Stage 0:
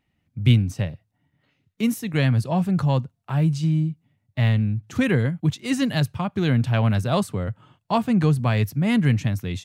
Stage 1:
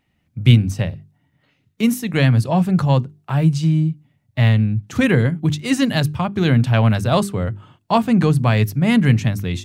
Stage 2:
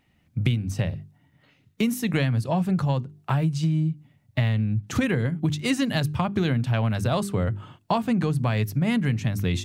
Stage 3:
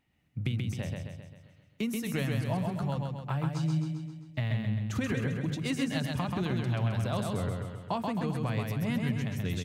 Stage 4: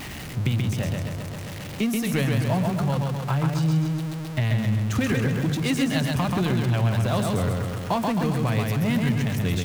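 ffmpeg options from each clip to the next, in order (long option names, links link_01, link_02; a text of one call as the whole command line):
ffmpeg -i in.wav -af "bandreject=frequency=50:width_type=h:width=6,bandreject=frequency=100:width_type=h:width=6,bandreject=frequency=150:width_type=h:width=6,bandreject=frequency=200:width_type=h:width=6,bandreject=frequency=250:width_type=h:width=6,bandreject=frequency=300:width_type=h:width=6,bandreject=frequency=350:width_type=h:width=6,bandreject=frequency=400:width_type=h:width=6,volume=5.5dB" out.wav
ffmpeg -i in.wav -af "acompressor=threshold=-22dB:ratio=10,volume=2dB" out.wav
ffmpeg -i in.wav -af "aecho=1:1:132|264|396|528|660|792|924:0.668|0.361|0.195|0.105|0.0568|0.0307|0.0166,volume=-9dB" out.wav
ffmpeg -i in.wav -af "aeval=exprs='val(0)+0.5*0.0168*sgn(val(0))':channel_layout=same,volume=6dB" out.wav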